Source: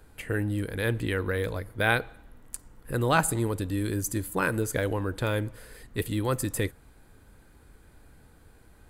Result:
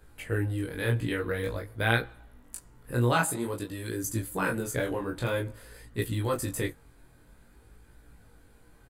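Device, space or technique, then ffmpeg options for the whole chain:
double-tracked vocal: -filter_complex "[0:a]asplit=2[s0][s1];[s1]adelay=17,volume=0.596[s2];[s0][s2]amix=inputs=2:normalize=0,flanger=delay=17.5:depth=7.1:speed=0.5,asettb=1/sr,asplit=3[s3][s4][s5];[s3]atrim=end=3.124[s6];[s4]atrim=start=3.12:end=4.04,asetpts=PTS-STARTPTS,afade=t=in:d=0.004:c=qsin,afade=t=out:st=0.916:d=0.004:c=qsin,highpass=f=220:p=1[s7];[s5]atrim=start=4.036[s8];[s6][s7]acrossfade=d=0.004:c1=hsin:c2=qsin[s9];[s9][s8]acrossfade=d=0.004:c1=qsin:c2=hsin"

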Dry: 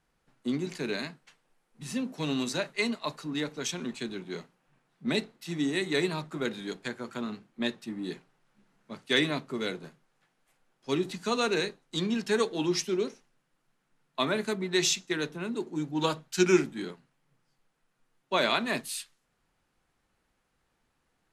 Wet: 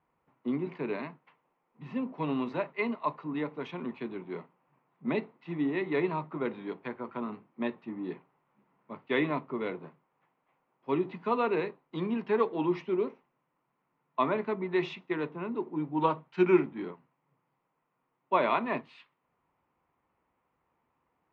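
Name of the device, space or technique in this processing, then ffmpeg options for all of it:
bass cabinet: -af "highpass=86,equalizer=f=120:t=q:w=4:g=-4,equalizer=f=200:t=q:w=4:g=-4,equalizer=f=1000:t=q:w=4:g=8,equalizer=f=1600:t=q:w=4:g=-9,lowpass=f=2300:w=0.5412,lowpass=f=2300:w=1.3066"

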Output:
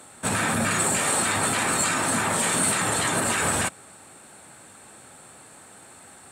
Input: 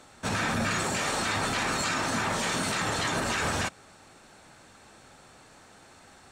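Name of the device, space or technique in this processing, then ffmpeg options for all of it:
budget condenser microphone: -af "highpass=88,highshelf=f=7100:t=q:w=3:g=6.5,volume=1.58"

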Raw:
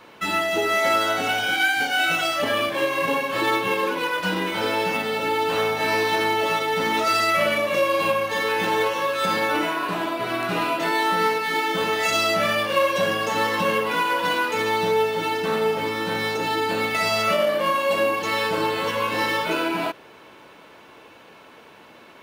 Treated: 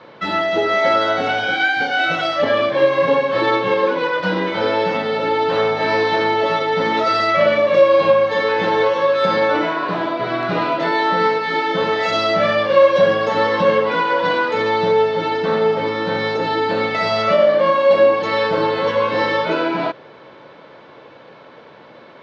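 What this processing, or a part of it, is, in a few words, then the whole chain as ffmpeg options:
guitar cabinet: -af "highpass=77,equalizer=f=140:t=q:w=4:g=7,equalizer=f=540:t=q:w=4:g=7,equalizer=f=2700:t=q:w=4:g=-8,lowpass=f=4500:w=0.5412,lowpass=f=4500:w=1.3066,volume=1.58"

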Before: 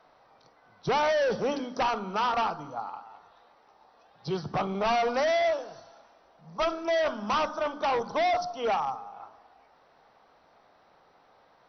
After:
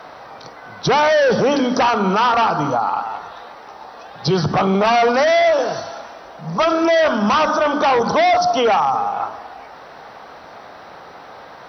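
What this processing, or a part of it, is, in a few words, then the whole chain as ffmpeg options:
mastering chain: -af "highpass=46,equalizer=f=1600:t=o:w=0.56:g=2.5,acompressor=threshold=0.0251:ratio=1.5,asoftclip=type=hard:threshold=0.0841,alimiter=level_in=33.5:limit=0.891:release=50:level=0:latency=1,volume=0.376"

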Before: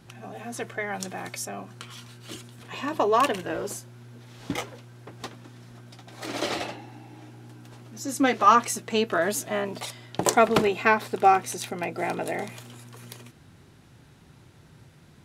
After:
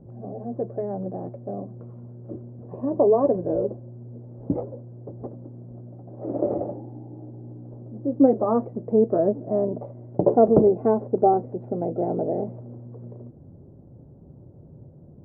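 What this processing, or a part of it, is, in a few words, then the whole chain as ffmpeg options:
under water: -af "lowpass=f=600:w=0.5412,lowpass=f=600:w=1.3066,equalizer=f=560:t=o:w=0.23:g=6,volume=2.11"

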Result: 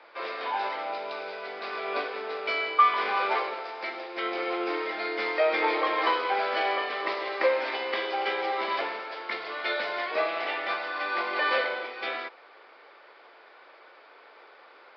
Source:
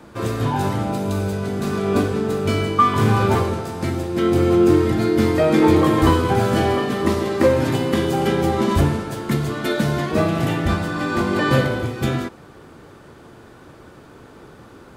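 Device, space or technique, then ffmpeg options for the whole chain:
musical greeting card: -af "aresample=11025,aresample=44100,highpass=f=530:w=0.5412,highpass=f=530:w=1.3066,equalizer=f=2200:t=o:w=0.37:g=8.5,volume=0.596"

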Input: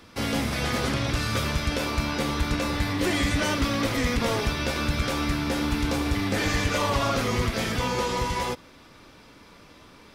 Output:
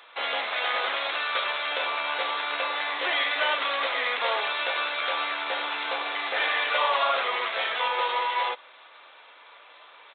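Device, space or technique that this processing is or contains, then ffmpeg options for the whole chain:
musical greeting card: -af "aresample=8000,aresample=44100,highpass=f=610:w=0.5412,highpass=f=610:w=1.3066,equalizer=f=4000:t=o:w=0.29:g=6,volume=1.5"

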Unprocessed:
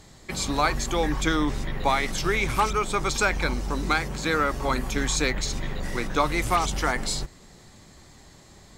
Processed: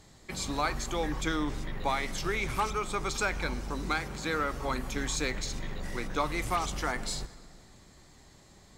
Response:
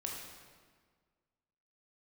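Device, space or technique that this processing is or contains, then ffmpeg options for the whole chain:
saturated reverb return: -filter_complex "[0:a]asplit=2[s0][s1];[1:a]atrim=start_sample=2205[s2];[s1][s2]afir=irnorm=-1:irlink=0,asoftclip=type=tanh:threshold=0.0531,volume=0.355[s3];[s0][s3]amix=inputs=2:normalize=0,volume=0.398"

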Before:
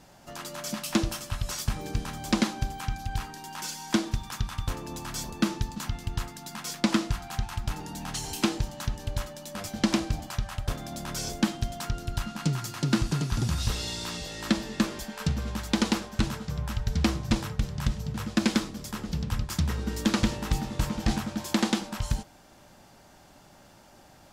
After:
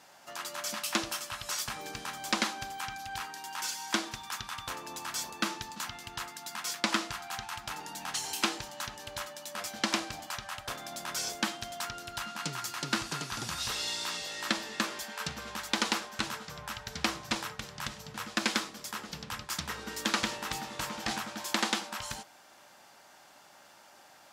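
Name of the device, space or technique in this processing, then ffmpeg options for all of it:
filter by subtraction: -filter_complex "[0:a]asplit=2[s0][s1];[s1]lowpass=1300,volume=-1[s2];[s0][s2]amix=inputs=2:normalize=0"

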